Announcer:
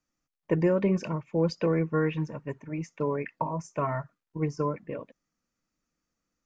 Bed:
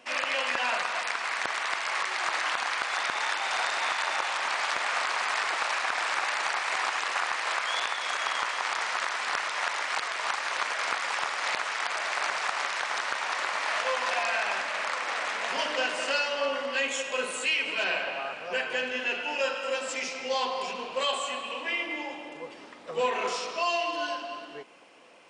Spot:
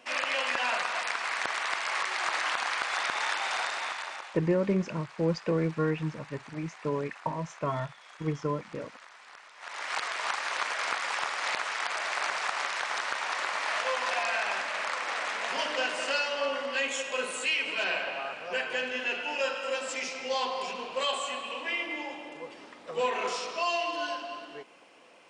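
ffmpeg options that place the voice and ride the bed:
-filter_complex "[0:a]adelay=3850,volume=0.794[s0];[1:a]volume=8.41,afade=t=out:st=3.41:d=0.99:silence=0.1,afade=t=in:st=9.59:d=0.4:silence=0.105925[s1];[s0][s1]amix=inputs=2:normalize=0"

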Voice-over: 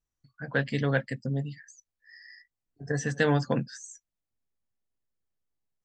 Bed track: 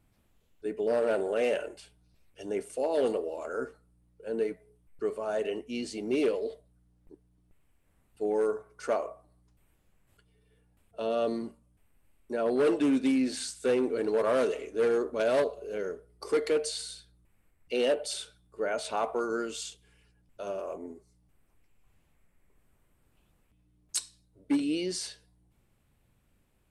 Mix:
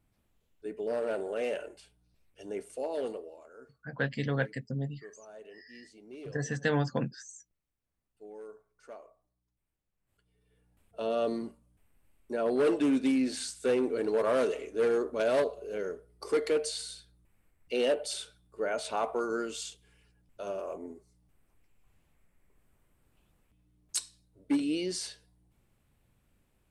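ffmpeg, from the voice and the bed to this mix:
-filter_complex "[0:a]adelay=3450,volume=0.631[s0];[1:a]volume=4.22,afade=t=out:st=2.83:d=0.67:silence=0.211349,afade=t=in:st=9.94:d=0.9:silence=0.133352[s1];[s0][s1]amix=inputs=2:normalize=0"

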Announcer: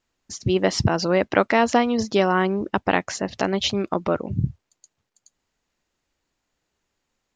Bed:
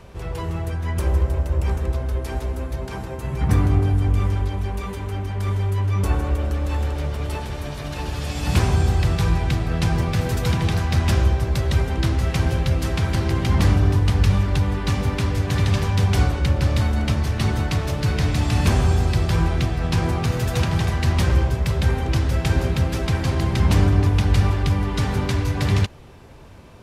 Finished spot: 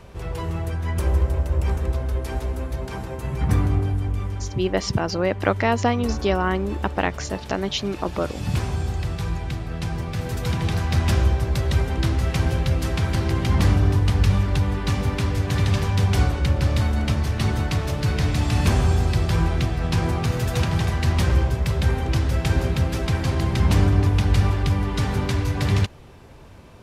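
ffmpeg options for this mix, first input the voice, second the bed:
-filter_complex "[0:a]adelay=4100,volume=0.75[s0];[1:a]volume=1.88,afade=t=out:st=3.27:d=0.97:silence=0.473151,afade=t=in:st=10.04:d=0.91:silence=0.501187[s1];[s0][s1]amix=inputs=2:normalize=0"

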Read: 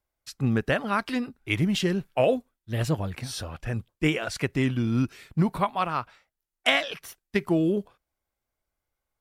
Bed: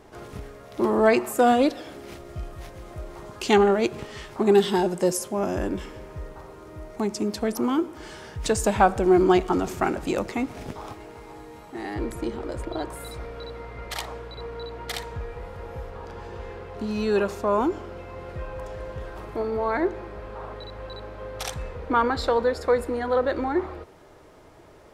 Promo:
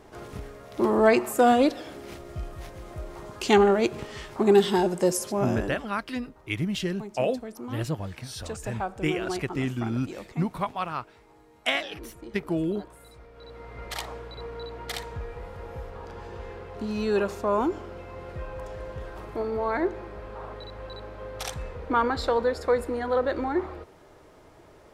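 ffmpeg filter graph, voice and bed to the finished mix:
-filter_complex "[0:a]adelay=5000,volume=0.631[s0];[1:a]volume=3.55,afade=t=out:st=5.46:d=0.39:silence=0.223872,afade=t=in:st=13.32:d=0.51:silence=0.266073[s1];[s0][s1]amix=inputs=2:normalize=0"

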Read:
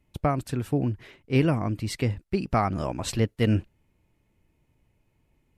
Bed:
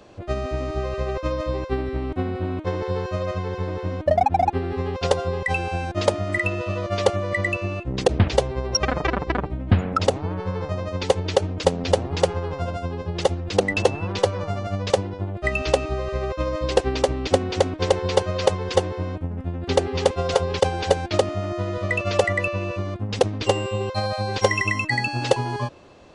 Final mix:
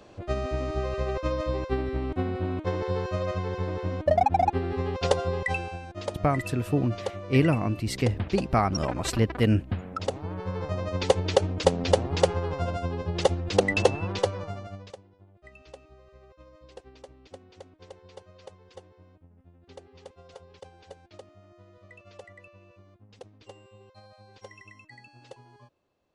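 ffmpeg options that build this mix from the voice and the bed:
-filter_complex "[0:a]adelay=6000,volume=1.06[s0];[1:a]volume=2.51,afade=t=out:st=5.4:d=0.4:silence=0.316228,afade=t=in:st=9.9:d=1.06:silence=0.281838,afade=t=out:st=13.88:d=1.08:silence=0.0530884[s1];[s0][s1]amix=inputs=2:normalize=0"

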